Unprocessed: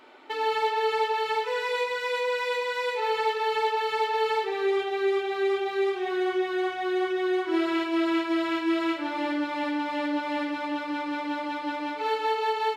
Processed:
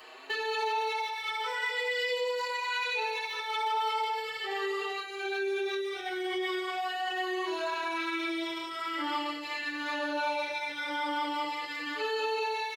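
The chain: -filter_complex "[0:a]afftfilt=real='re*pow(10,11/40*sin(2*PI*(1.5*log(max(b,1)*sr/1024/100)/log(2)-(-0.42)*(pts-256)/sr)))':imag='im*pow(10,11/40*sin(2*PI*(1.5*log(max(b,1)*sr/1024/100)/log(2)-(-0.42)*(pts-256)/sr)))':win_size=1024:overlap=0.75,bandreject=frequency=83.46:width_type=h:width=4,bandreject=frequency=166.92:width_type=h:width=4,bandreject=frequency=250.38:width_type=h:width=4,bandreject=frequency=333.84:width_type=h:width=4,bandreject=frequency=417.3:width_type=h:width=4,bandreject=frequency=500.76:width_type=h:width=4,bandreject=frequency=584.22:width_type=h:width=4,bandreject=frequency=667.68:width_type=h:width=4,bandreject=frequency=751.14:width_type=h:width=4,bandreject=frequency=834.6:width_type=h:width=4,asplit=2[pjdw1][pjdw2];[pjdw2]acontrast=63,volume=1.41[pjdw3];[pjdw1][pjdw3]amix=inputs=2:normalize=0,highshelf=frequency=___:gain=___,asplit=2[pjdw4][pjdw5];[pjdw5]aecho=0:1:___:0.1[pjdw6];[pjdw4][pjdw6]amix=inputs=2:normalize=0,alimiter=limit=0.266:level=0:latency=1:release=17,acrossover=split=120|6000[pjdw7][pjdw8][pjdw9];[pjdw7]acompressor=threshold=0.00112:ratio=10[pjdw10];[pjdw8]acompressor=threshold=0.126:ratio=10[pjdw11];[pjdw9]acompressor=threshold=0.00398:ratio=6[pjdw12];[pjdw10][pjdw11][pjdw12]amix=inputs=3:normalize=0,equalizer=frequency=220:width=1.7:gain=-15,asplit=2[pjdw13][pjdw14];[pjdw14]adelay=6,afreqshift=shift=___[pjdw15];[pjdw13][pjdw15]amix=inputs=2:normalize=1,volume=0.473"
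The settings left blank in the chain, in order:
2700, 7.5, 471, 0.95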